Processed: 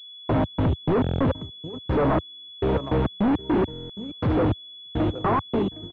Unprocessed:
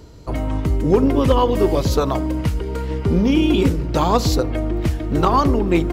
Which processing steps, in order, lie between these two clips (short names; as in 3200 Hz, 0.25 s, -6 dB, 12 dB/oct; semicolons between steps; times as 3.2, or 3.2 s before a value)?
ending faded out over 1.14 s; low shelf 160 Hz +3.5 dB; negative-ratio compressor -17 dBFS, ratio -1; step gate "..x.x.x.x....xx." 103 bpm -60 dB; HPF 87 Hz 24 dB/oct; on a send: echo 0.763 s -22.5 dB; on the sum: hard clip -26.5 dBFS, distortion -5 dB; stuck buffer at 1.02/2.3/3.71/4.57, samples 1024, times 7; pulse-width modulation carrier 3400 Hz; gain +8 dB